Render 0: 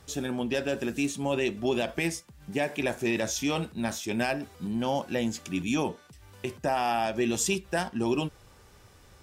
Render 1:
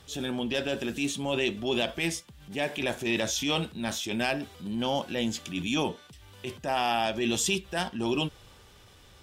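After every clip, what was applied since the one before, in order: peaking EQ 3.3 kHz +9 dB 0.61 oct; transient shaper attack -7 dB, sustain +1 dB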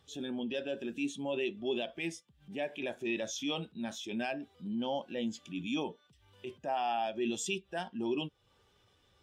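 bass shelf 110 Hz -10.5 dB; compression 1.5:1, threshold -47 dBFS, peak gain reduction 8.5 dB; spectral contrast expander 1.5:1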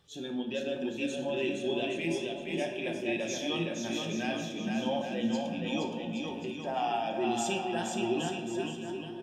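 bouncing-ball echo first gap 470 ms, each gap 0.75×, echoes 5; simulated room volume 490 m³, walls mixed, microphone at 0.91 m; attacks held to a fixed rise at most 350 dB/s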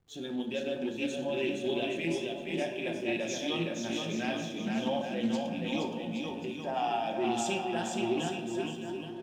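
hysteresis with a dead band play -56 dBFS; loudspeaker Doppler distortion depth 0.14 ms

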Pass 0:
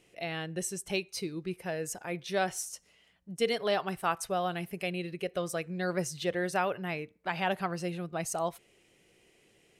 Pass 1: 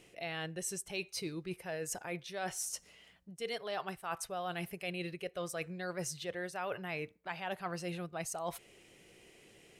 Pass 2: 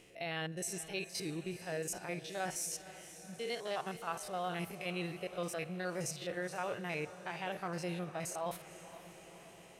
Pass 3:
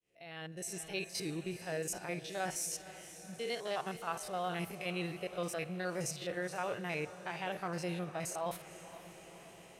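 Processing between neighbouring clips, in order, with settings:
dynamic bell 240 Hz, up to -6 dB, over -47 dBFS, Q 0.91; reverse; compression 6:1, threshold -41 dBFS, peak gain reduction 16 dB; reverse; trim +4.5 dB
spectrogram pixelated in time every 50 ms; echo that smears into a reverb 490 ms, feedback 64%, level -14.5 dB; trim +1.5 dB
fade-in on the opening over 0.96 s; trim +1 dB

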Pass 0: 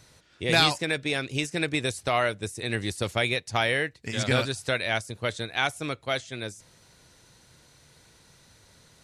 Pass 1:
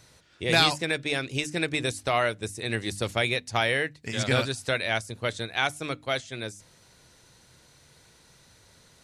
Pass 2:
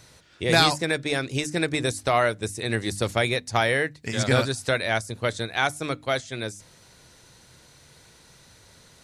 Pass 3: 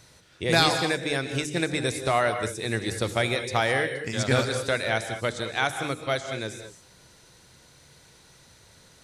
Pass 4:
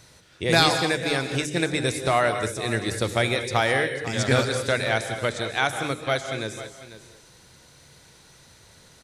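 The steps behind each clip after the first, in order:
hum notches 50/100/150/200/250/300 Hz
dynamic bell 2.8 kHz, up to -7 dB, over -42 dBFS, Q 2; trim +4 dB
gated-style reverb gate 240 ms rising, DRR 8 dB; trim -2 dB
delay 496 ms -14.5 dB; trim +2 dB

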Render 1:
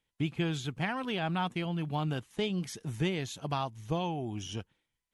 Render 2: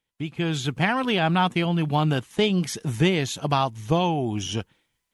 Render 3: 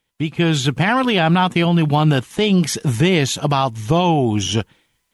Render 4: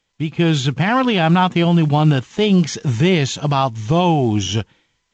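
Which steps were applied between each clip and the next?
level rider gain up to 11 dB; bass shelf 74 Hz -5.5 dB
peak limiter -16 dBFS, peak gain reduction 7.5 dB; trim +9 dB
harmonic-percussive split percussive -5 dB; trim +1.5 dB; A-law 128 kbps 16 kHz

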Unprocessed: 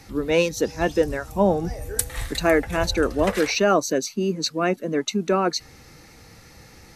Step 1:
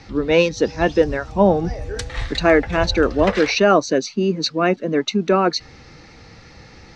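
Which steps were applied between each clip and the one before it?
low-pass 5.3 kHz 24 dB/octave; trim +4.5 dB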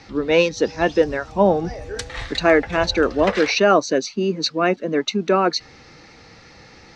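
bass shelf 150 Hz -9 dB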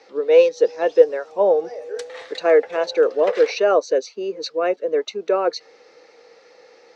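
resonant high-pass 480 Hz, resonance Q 4.9; trim -8 dB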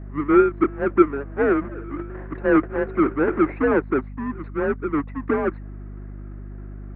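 square wave that keeps the level; mistuned SSB -140 Hz 160–2000 Hz; hum 50 Hz, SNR 13 dB; trim -5.5 dB

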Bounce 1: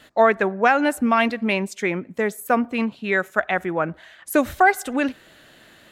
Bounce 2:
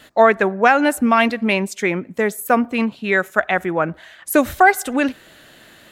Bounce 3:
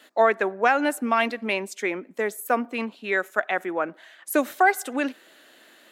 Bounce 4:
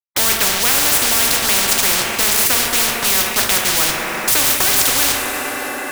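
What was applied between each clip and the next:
treble shelf 8.1 kHz +4.5 dB; trim +3.5 dB
high-pass 250 Hz 24 dB/octave; trim -6.5 dB
word length cut 6-bit, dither none; two-slope reverb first 0.39 s, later 4.5 s, from -18 dB, DRR 2.5 dB; spectrum-flattening compressor 10:1; trim +2 dB

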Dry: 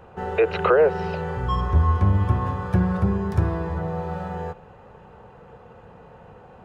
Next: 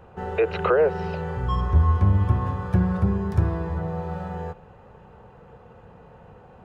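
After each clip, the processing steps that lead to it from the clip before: bass shelf 210 Hz +4 dB; trim -3 dB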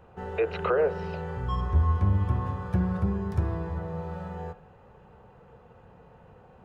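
de-hum 53.2 Hz, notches 34; trim -4.5 dB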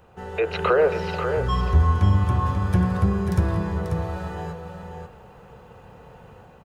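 treble shelf 3.4 kHz +11.5 dB; level rider gain up to 5.5 dB; on a send: multi-tap echo 167/539 ms -18.5/-7 dB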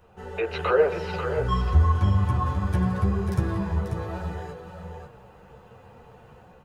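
chorus voices 4, 0.9 Hz, delay 12 ms, depth 3.7 ms

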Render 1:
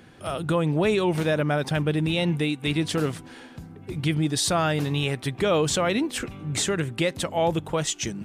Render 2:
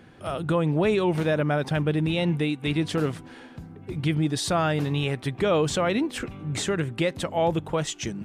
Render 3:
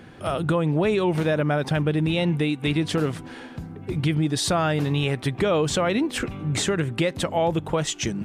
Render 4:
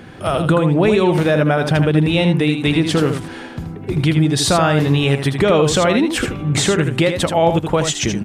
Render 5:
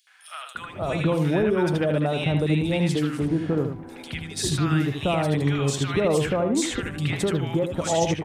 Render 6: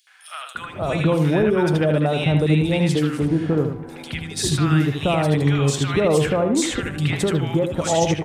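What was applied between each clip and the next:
treble shelf 3.9 kHz -7.5 dB
compression 2:1, threshold -27 dBFS, peak gain reduction 5.5 dB; trim +5.5 dB
delay 79 ms -7 dB; trim +7 dB
three bands offset in time highs, mids, lows 70/550 ms, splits 1.2/3.8 kHz; trim -7.5 dB
reverberation RT60 1.7 s, pre-delay 3 ms, DRR 17 dB; trim +3.5 dB

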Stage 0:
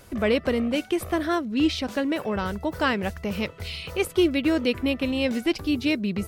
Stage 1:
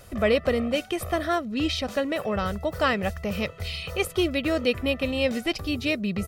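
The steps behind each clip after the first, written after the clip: comb 1.6 ms, depth 46%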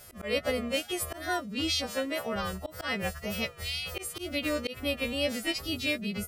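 partials quantised in pitch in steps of 2 st; slow attack 153 ms; wow and flutter 76 cents; trim -5.5 dB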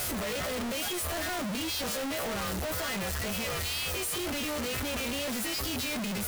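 one-bit comparator

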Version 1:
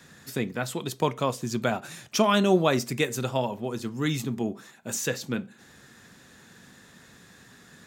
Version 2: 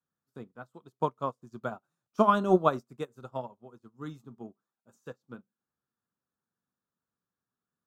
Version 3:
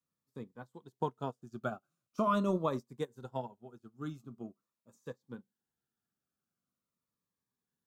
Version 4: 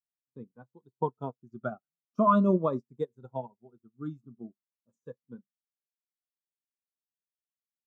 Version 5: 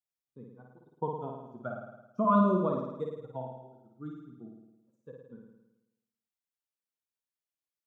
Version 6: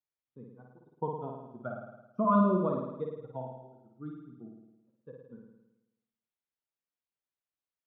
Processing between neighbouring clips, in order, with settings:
resonant high shelf 1.6 kHz -7.5 dB, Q 3; upward expansion 2.5:1, over -42 dBFS
peak limiter -17.5 dBFS, peak gain reduction 9 dB; Shepard-style phaser falling 0.43 Hz
spectral contrast expander 1.5:1; trim +7 dB
flutter echo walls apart 9.3 m, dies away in 0.96 s; trim -4.5 dB
distance through air 230 m

